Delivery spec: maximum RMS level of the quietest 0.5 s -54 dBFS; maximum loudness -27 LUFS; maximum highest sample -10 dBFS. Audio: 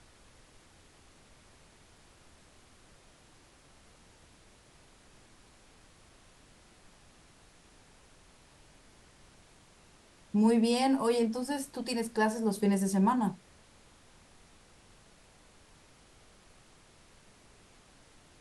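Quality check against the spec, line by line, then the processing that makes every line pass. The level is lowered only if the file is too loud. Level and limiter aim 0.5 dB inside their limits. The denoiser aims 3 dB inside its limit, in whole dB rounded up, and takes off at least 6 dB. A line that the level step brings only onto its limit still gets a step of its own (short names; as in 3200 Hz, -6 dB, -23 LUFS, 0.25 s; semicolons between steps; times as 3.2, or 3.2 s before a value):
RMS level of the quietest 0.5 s -60 dBFS: OK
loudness -29.0 LUFS: OK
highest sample -14.5 dBFS: OK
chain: none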